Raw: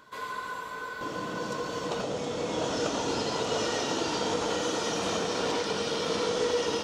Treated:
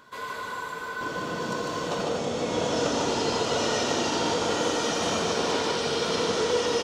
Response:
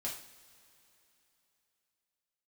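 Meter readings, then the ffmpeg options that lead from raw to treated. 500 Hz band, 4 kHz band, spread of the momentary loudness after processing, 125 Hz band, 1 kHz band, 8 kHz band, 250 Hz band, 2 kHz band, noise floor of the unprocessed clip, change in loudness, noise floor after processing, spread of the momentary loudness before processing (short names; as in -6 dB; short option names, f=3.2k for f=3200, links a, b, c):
+3.0 dB, +3.5 dB, 8 LU, +3.5 dB, +3.5 dB, +4.0 dB, +3.5 dB, +4.0 dB, -38 dBFS, +3.5 dB, -37 dBFS, 8 LU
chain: -filter_complex "[0:a]aecho=1:1:150:0.708,asplit=2[a][b];[1:a]atrim=start_sample=2205[c];[b][c]afir=irnorm=-1:irlink=0,volume=-8dB[d];[a][d]amix=inputs=2:normalize=0"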